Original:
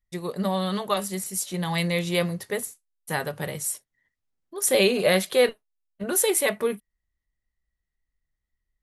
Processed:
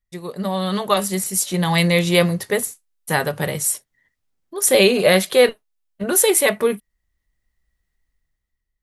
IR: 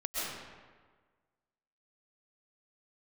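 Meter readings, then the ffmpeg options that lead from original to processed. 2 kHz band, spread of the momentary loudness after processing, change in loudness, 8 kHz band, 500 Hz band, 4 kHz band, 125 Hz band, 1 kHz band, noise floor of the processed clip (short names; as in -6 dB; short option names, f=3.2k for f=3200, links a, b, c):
+7.0 dB, 14 LU, +6.5 dB, +7.0 dB, +6.5 dB, +7.0 dB, +7.5 dB, +6.5 dB, -78 dBFS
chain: -af "dynaudnorm=f=110:g=13:m=10dB"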